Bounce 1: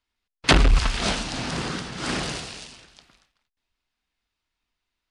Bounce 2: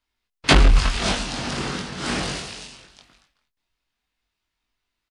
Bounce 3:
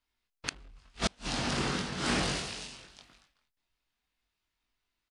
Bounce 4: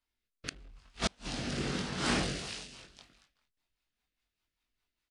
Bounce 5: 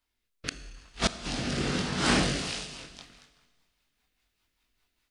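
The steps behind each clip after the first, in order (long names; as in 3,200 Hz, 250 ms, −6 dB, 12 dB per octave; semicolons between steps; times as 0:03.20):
double-tracking delay 21 ms −3 dB
gate with flip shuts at −11 dBFS, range −36 dB; level −4 dB
rotating-speaker cabinet horn 0.85 Hz, later 5 Hz, at 0:02.00
speech leveller 2 s; four-comb reverb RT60 1.6 s, combs from 25 ms, DRR 12 dB; level +5.5 dB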